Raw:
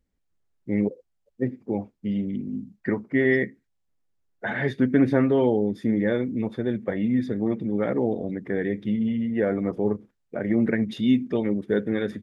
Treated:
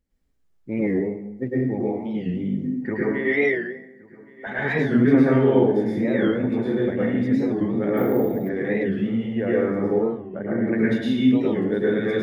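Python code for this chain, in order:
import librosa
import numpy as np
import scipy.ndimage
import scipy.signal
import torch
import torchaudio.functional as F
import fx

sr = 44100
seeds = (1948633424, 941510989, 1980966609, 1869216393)

p1 = fx.highpass(x, sr, hz=360.0, slope=12, at=(3.07, 4.47))
p2 = fx.rider(p1, sr, range_db=3, speed_s=0.5)
p3 = p1 + (p2 * librosa.db_to_amplitude(-3.0))
p4 = fx.savgol(p3, sr, points=41, at=(9.89, 10.68))
p5 = p4 + fx.echo_single(p4, sr, ms=1120, db=-23.0, dry=0)
p6 = fx.rev_plate(p5, sr, seeds[0], rt60_s=0.89, hf_ratio=0.7, predelay_ms=95, drr_db=-7.0)
p7 = fx.resample_bad(p6, sr, factor=3, down='none', up='hold', at=(7.97, 8.49))
p8 = fx.record_warp(p7, sr, rpm=45.0, depth_cents=160.0)
y = p8 * librosa.db_to_amplitude(-8.5)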